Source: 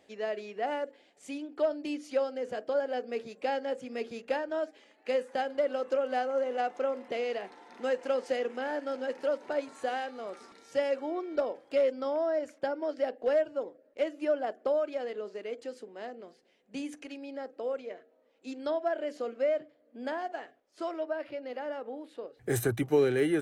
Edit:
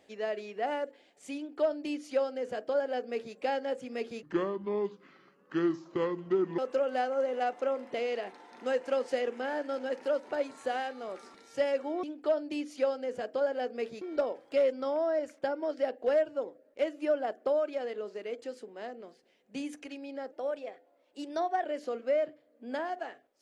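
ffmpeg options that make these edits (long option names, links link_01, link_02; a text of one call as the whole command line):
ffmpeg -i in.wav -filter_complex "[0:a]asplit=7[link_01][link_02][link_03][link_04][link_05][link_06][link_07];[link_01]atrim=end=4.234[link_08];[link_02]atrim=start=4.23:end=5.76,asetpts=PTS-STARTPTS,asetrate=28665,aresample=44100[link_09];[link_03]atrim=start=5.756:end=11.212[link_10];[link_04]atrim=start=1.368:end=3.352[link_11];[link_05]atrim=start=11.208:end=17.514[link_12];[link_06]atrim=start=17.51:end=18.97,asetpts=PTS-STARTPTS,asetrate=48510,aresample=44100[link_13];[link_07]atrim=start=18.966[link_14];[link_08][link_09]acrossfade=duration=0.004:curve1=hsin:curve2=hsin[link_15];[link_15][link_10]acrossfade=duration=0.004:curve1=hsin:curve2=hsin[link_16];[link_16][link_11]acrossfade=duration=0.004:curve1=hsin:curve2=hsin[link_17];[link_17][link_12]acrossfade=duration=0.004:curve1=hsin:curve2=hsin[link_18];[link_18][link_13]acrossfade=duration=0.004:curve1=hsin:curve2=hsin[link_19];[link_19][link_14]acrossfade=duration=0.004:curve1=hsin:curve2=hsin" out.wav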